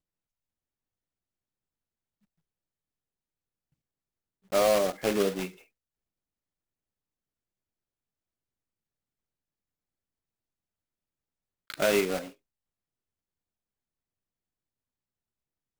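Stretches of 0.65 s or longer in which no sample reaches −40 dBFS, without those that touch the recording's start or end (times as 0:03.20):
0:05.49–0:11.70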